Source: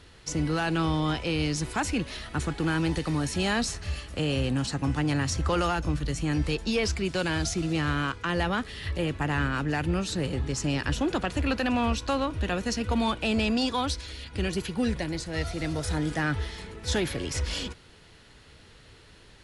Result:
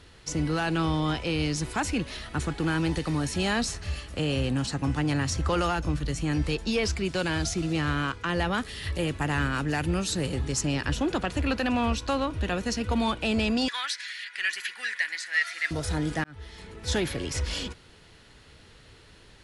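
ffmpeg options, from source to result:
-filter_complex "[0:a]asettb=1/sr,asplit=3[a][b][c];[a]atrim=end=8.544[d];[b]atrim=start=8.54:end=10.61,asetpts=PTS-STARTPTS,afade=t=in:d=0.004:c=qsin,afade=t=out:st=2.066:d=0.004:c=qsin,highshelf=f=6.7k:g=10[e];[c]atrim=start=10.606[f];[d][e]acrossfade=d=0.004:c1=hsin:c2=qsin[g];[g][f]acrossfade=d=0.004:c1=qsin:c2=hsin,asettb=1/sr,asplit=3[h][i][j];[h]atrim=end=13.684[k];[i]atrim=start=13.68:end=15.71,asetpts=PTS-STARTPTS,afade=t=in:d=0.004:c=qsin,afade=t=out:st=2.026:d=0.004:c=qsin,highpass=f=1.8k:t=q:w=5.3[l];[j]atrim=start=15.706[m];[k][l]acrossfade=d=0.004:c1=hsin:c2=qsin[n];[n][m]acrossfade=d=0.004:c1=qsin:c2=hsin,asplit=2[o][p];[o]atrim=end=16.24,asetpts=PTS-STARTPTS,afade=t=out:st=16.236:d=0.004:c=hsin[q];[p]atrim=start=16.24,asetpts=PTS-STARTPTS,afade=t=in:d=0.62[r];[q][r]concat=n=2:v=0:a=1"

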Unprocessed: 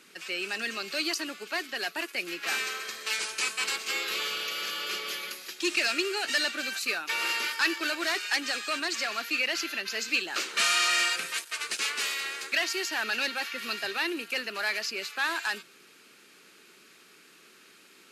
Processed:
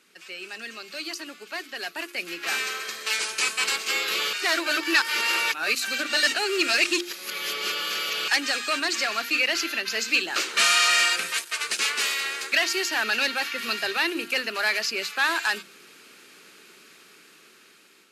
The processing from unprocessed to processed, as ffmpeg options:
-filter_complex "[0:a]asplit=3[a][b][c];[a]atrim=end=4.332[d];[b]atrim=start=4.328:end=8.282,asetpts=PTS-STARTPTS,areverse[e];[c]atrim=start=8.278[f];[d][e]acrossfade=d=0.004:c1=hsin:c2=hsin[g];[g][f]acrossfade=d=0.004:c1=hsin:c2=hsin,bandreject=f=50:t=h:w=6,bandreject=f=100:t=h:w=6,bandreject=f=150:t=h:w=6,bandreject=f=200:t=h:w=6,bandreject=f=250:t=h:w=6,bandreject=f=300:t=h:w=6,bandreject=f=350:t=h:w=6,dynaudnorm=f=900:g=5:m=11.5dB,volume=-5dB"

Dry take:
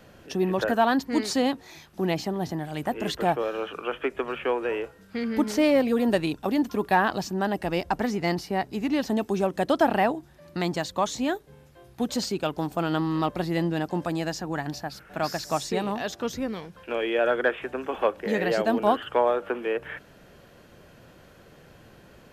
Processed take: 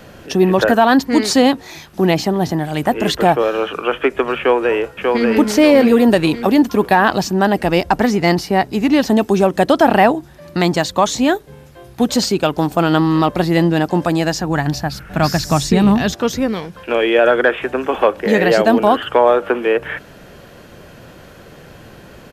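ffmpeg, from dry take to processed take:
-filter_complex "[0:a]asplit=2[a][b];[b]afade=t=in:st=4.38:d=0.01,afade=t=out:st=5.29:d=0.01,aecho=0:1:590|1180|1770|2360|2950:0.707946|0.283178|0.113271|0.0453085|0.0181234[c];[a][c]amix=inputs=2:normalize=0,asettb=1/sr,asplit=3[d][e][f];[d]atrim=end=14.244[g];[e]atrim=start=14.24:end=16.14,asetpts=PTS-STARTPTS,afade=t=in:d=0.004:c=qsin,afade=t=out:st=1.896:d=0.004:c=qsin,asubboost=boost=9.5:cutoff=220[h];[f]atrim=start=16.136[i];[g][h]acrossfade=d=0.004:c1=hsin:c2=qsin[j];[j][i]acrossfade=d=0.004:c1=qsin:c2=hsin,alimiter=level_in=13dB:limit=-1dB:release=50:level=0:latency=1,volume=-1dB"

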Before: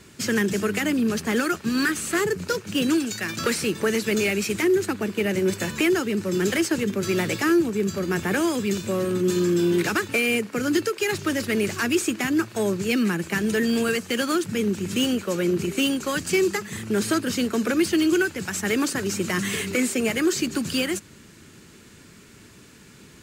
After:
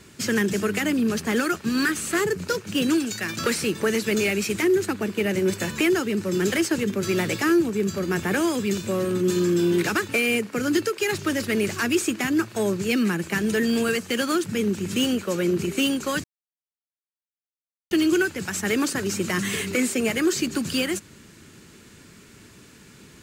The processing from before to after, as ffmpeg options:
-filter_complex "[0:a]asplit=3[a][b][c];[a]atrim=end=16.24,asetpts=PTS-STARTPTS,afade=t=out:st=16.236:d=0.004:c=hsin[d];[b]atrim=start=16.24:end=17.91,asetpts=PTS-STARTPTS,volume=0[e];[c]atrim=start=17.91,asetpts=PTS-STARTPTS,afade=t=in:d=0.004:c=hsin[f];[d][e][f]concat=n=3:v=0:a=1"

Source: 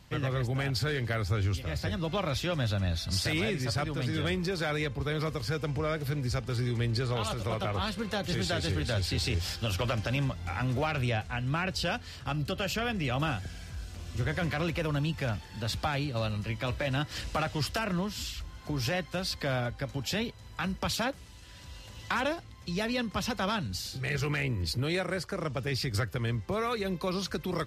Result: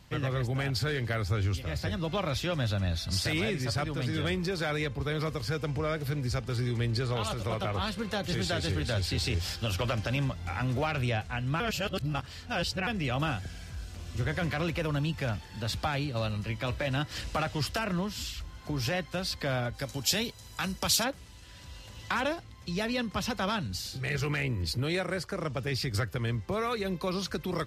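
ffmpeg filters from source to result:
-filter_complex "[0:a]asplit=3[a][b][c];[a]afade=t=out:st=19.73:d=0.02[d];[b]bass=f=250:g=-2,treble=f=4k:g=12,afade=t=in:st=19.73:d=0.02,afade=t=out:st=21.03:d=0.02[e];[c]afade=t=in:st=21.03:d=0.02[f];[d][e][f]amix=inputs=3:normalize=0,asplit=3[g][h][i];[g]atrim=end=11.602[j];[h]atrim=start=11.598:end=12.872,asetpts=PTS-STARTPTS,areverse[k];[i]atrim=start=12.868[l];[j][k]acrossfade=d=0.004:c1=hsin:c2=hsin[m];[m][l]acrossfade=d=0.004:c1=hsin:c2=hsin"

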